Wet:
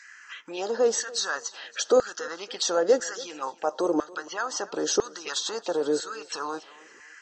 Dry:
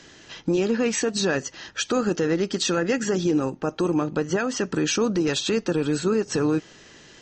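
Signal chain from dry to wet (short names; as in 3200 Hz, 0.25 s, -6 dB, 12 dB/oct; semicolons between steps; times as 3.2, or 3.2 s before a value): LFO high-pass saw down 1 Hz 440–1900 Hz; envelope phaser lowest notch 510 Hz, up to 2400 Hz, full sweep at -26 dBFS; thinning echo 0.281 s, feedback 33%, high-pass 160 Hz, level -20 dB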